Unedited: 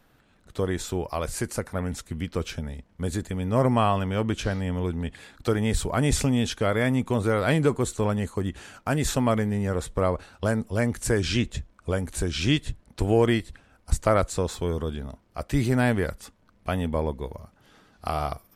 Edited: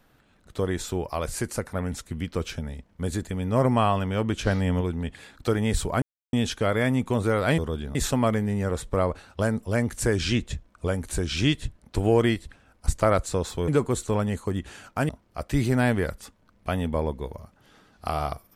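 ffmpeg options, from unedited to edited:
-filter_complex "[0:a]asplit=9[s0][s1][s2][s3][s4][s5][s6][s7][s8];[s0]atrim=end=4.472[s9];[s1]atrim=start=4.468:end=4.812,asetpts=PTS-STARTPTS,volume=1.58[s10];[s2]atrim=start=4.808:end=6.02,asetpts=PTS-STARTPTS,afade=t=out:st=1.208:d=0.004:c=hsin[s11];[s3]atrim=start=6.02:end=6.33,asetpts=PTS-STARTPTS,volume=0[s12];[s4]atrim=start=6.33:end=7.582,asetpts=PTS-STARTPTS,afade=t=in:d=0.004:c=hsin[s13];[s5]atrim=start=14.718:end=15.092[s14];[s6]atrim=start=8.988:end=14.722[s15];[s7]atrim=start=7.578:end=8.992[s16];[s8]atrim=start=15.088[s17];[s9][s10]acrossfade=d=0.004:c1=hsin:c2=hsin[s18];[s11][s12][s13]concat=n=3:v=0:a=1[s19];[s18][s19]acrossfade=d=0.004:c1=hsin:c2=hsin[s20];[s20][s14]acrossfade=d=0.004:c1=hsin:c2=hsin[s21];[s21][s15]acrossfade=d=0.004:c1=hsin:c2=hsin[s22];[s22][s16]acrossfade=d=0.004:c1=hsin:c2=hsin[s23];[s23][s17]acrossfade=d=0.004:c1=hsin:c2=hsin"

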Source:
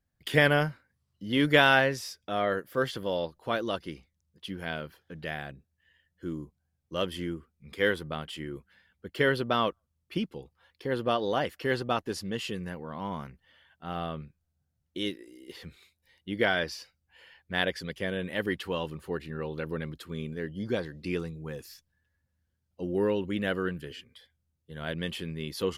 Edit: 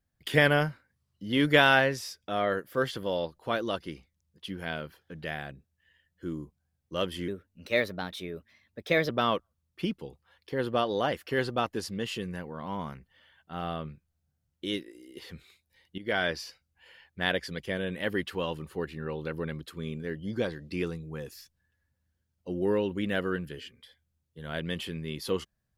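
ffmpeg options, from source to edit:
-filter_complex "[0:a]asplit=4[s0][s1][s2][s3];[s0]atrim=end=7.284[s4];[s1]atrim=start=7.28:end=9.42,asetpts=PTS-STARTPTS,asetrate=52038,aresample=44100[s5];[s2]atrim=start=9.416:end=16.31,asetpts=PTS-STARTPTS,afade=t=out:st=6.89:d=0.004:c=hsin:silence=0.177828[s6];[s3]atrim=start=16.31,asetpts=PTS-STARTPTS,afade=t=in:d=0.25:silence=0.177828[s7];[s4][s5]acrossfade=d=0.004:c1=hsin:c2=hsin[s8];[s6][s7]concat=n=2:v=0:a=1[s9];[s8][s9]acrossfade=d=0.004:c1=hsin:c2=hsin"

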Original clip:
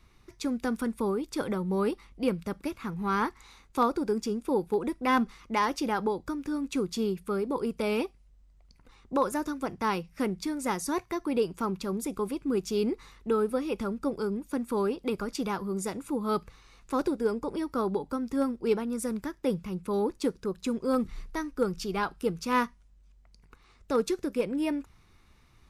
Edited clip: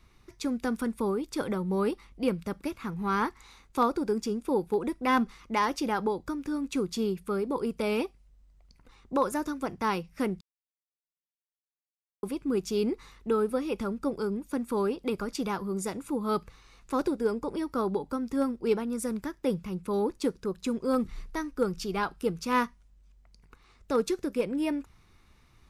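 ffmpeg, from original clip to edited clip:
-filter_complex "[0:a]asplit=3[s0][s1][s2];[s0]atrim=end=10.41,asetpts=PTS-STARTPTS,afade=t=out:st=10.406:d=0.004:c=hsin[s3];[s1]atrim=start=10.41:end=12.23,asetpts=PTS-STARTPTS,volume=0[s4];[s2]atrim=start=12.23,asetpts=PTS-STARTPTS,afade=t=in:d=0.004:c=hsin[s5];[s3][s4][s5]concat=n=3:v=0:a=1"

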